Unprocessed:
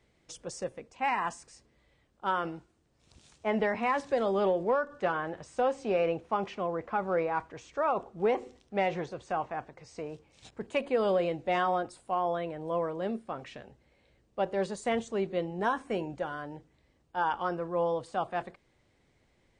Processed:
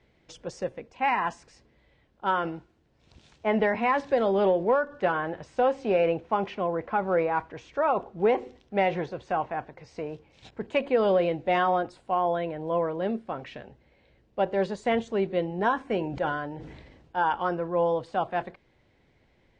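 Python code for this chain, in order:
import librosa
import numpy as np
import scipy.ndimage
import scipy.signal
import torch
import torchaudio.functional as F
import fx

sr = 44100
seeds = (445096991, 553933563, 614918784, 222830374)

y = scipy.signal.sosfilt(scipy.signal.butter(2, 4100.0, 'lowpass', fs=sr, output='sos'), x)
y = fx.notch(y, sr, hz=1200.0, q=12.0)
y = fx.sustainer(y, sr, db_per_s=39.0, at=(16.01, 17.19))
y = y * 10.0 ** (4.5 / 20.0)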